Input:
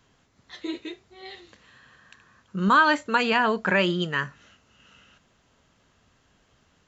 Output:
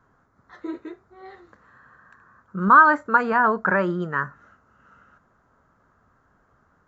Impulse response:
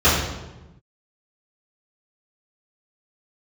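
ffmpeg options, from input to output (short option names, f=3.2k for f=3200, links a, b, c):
-af "highshelf=f=2k:t=q:w=3:g=-13"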